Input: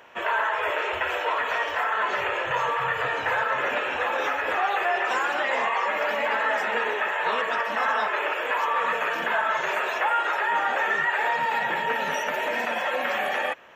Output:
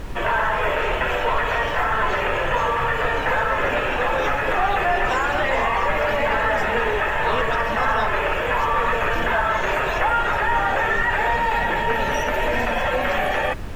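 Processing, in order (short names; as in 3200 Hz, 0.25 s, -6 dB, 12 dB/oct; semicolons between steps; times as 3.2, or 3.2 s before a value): Bessel high-pass 190 Hz; low shelf 380 Hz +11 dB; in parallel at -2.5 dB: limiter -23 dBFS, peak gain reduction 11 dB; on the sum: added noise brown -28 dBFS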